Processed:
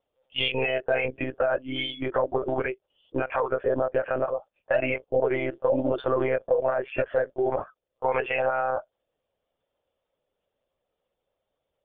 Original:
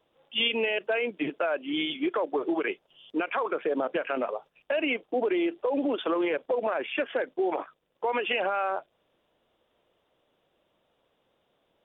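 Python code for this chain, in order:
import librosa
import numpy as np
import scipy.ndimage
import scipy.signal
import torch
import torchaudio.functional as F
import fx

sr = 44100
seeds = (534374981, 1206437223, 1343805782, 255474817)

y = fx.noise_reduce_blind(x, sr, reduce_db=12)
y = fx.lpc_monotone(y, sr, seeds[0], pitch_hz=130.0, order=16)
y = fx.peak_eq(y, sr, hz=560.0, db=6.5, octaves=0.52)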